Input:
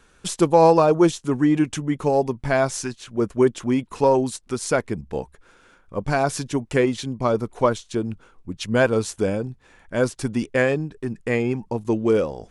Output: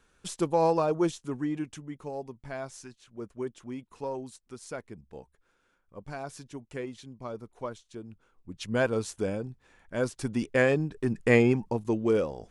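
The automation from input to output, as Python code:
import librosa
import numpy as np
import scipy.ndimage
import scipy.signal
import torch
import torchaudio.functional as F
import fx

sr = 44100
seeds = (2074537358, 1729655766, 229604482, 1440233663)

y = fx.gain(x, sr, db=fx.line((1.12, -10.0), (2.02, -17.5), (8.11, -17.5), (8.65, -8.0), (10.05, -8.0), (11.38, 2.0), (11.9, -6.0)))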